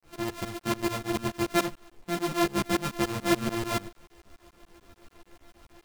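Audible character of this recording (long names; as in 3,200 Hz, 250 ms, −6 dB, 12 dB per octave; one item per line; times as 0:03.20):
a buzz of ramps at a fixed pitch in blocks of 128 samples
tremolo saw up 6.9 Hz, depth 100%
a quantiser's noise floor 10 bits, dither none
a shimmering, thickened sound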